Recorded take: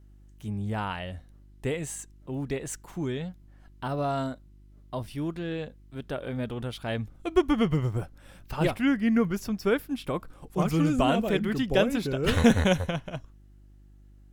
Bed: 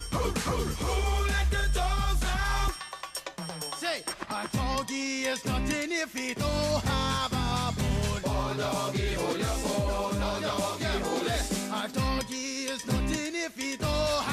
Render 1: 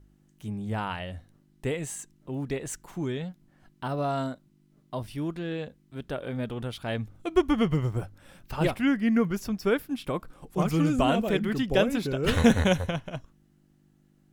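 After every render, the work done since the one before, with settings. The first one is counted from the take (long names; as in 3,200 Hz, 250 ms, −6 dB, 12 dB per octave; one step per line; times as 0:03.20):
hum removal 50 Hz, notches 2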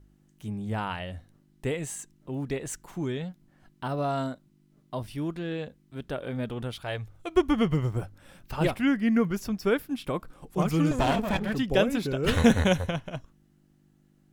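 0:06.81–0:07.37: parametric band 230 Hz −15 dB 0.73 octaves
0:10.91–0:11.55: lower of the sound and its delayed copy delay 1.2 ms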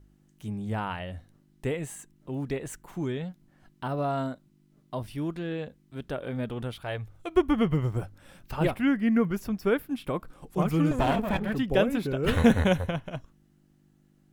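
dynamic equaliser 5,800 Hz, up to −8 dB, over −52 dBFS, Q 0.85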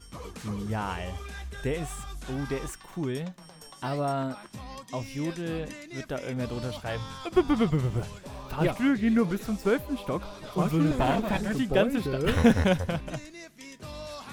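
mix in bed −12.5 dB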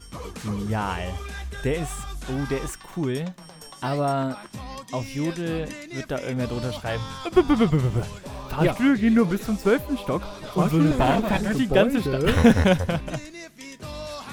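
level +5 dB
brickwall limiter −2 dBFS, peak gain reduction 1 dB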